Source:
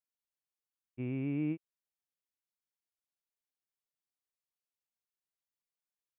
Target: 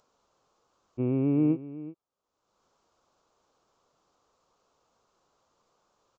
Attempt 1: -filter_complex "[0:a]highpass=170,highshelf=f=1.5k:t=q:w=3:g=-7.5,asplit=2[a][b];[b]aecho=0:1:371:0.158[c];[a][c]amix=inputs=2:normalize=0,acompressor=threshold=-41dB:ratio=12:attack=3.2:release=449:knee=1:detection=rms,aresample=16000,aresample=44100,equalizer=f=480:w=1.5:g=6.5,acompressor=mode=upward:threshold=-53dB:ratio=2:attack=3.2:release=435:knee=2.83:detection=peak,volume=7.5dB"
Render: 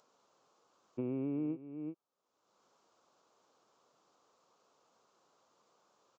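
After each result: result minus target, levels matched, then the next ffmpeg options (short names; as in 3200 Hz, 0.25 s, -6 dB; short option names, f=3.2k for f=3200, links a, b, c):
compressor: peak gain reduction +12.5 dB; 125 Hz band -2.0 dB
-filter_complex "[0:a]highpass=170,highshelf=f=1.5k:t=q:w=3:g=-7.5,asplit=2[a][b];[b]aecho=0:1:371:0.158[c];[a][c]amix=inputs=2:normalize=0,aresample=16000,aresample=44100,equalizer=f=480:w=1.5:g=6.5,acompressor=mode=upward:threshold=-53dB:ratio=2:attack=3.2:release=435:knee=2.83:detection=peak,volume=7.5dB"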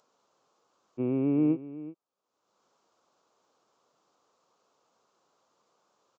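125 Hz band -4.0 dB
-filter_complex "[0:a]highshelf=f=1.5k:t=q:w=3:g=-7.5,asplit=2[a][b];[b]aecho=0:1:371:0.158[c];[a][c]amix=inputs=2:normalize=0,aresample=16000,aresample=44100,equalizer=f=480:w=1.5:g=6.5,acompressor=mode=upward:threshold=-53dB:ratio=2:attack=3.2:release=435:knee=2.83:detection=peak,volume=7.5dB"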